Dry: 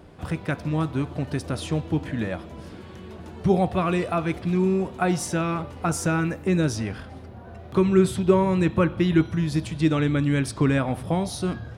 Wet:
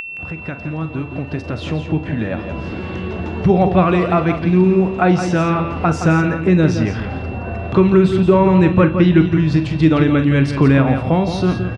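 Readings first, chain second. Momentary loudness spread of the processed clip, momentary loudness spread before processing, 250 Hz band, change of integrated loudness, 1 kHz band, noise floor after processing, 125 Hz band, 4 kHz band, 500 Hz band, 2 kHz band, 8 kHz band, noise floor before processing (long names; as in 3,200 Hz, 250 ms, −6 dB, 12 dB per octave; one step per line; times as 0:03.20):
13 LU, 17 LU, +8.5 dB, +8.5 dB, +8.5 dB, −30 dBFS, +9.0 dB, +5.0 dB, +8.0 dB, +8.0 dB, can't be measured, −42 dBFS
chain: fade in at the beginning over 3.82 s
in parallel at 0 dB: downward compressor, threshold −34 dBFS, peak gain reduction 20 dB
on the sum: double-tracking delay 44 ms −12.5 dB
steady tone 2,700 Hz −45 dBFS
high-frequency loss of the air 170 metres
upward compression, threshold −26 dBFS
on a send: single-tap delay 169 ms −8.5 dB
on the sum: boost into a limiter +8 dB
level −1 dB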